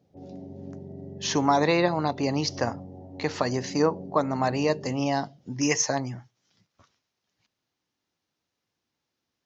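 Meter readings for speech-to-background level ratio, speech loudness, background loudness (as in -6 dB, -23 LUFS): 15.5 dB, -26.5 LUFS, -42.0 LUFS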